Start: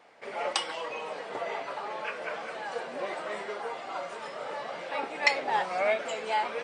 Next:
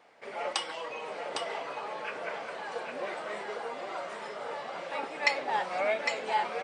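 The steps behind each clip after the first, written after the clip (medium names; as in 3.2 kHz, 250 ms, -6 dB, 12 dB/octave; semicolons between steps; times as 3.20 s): delay 806 ms -5.5 dB; trim -2.5 dB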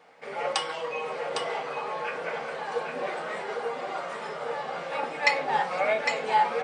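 reverberation RT60 0.40 s, pre-delay 3 ms, DRR 3 dB; trim +2.5 dB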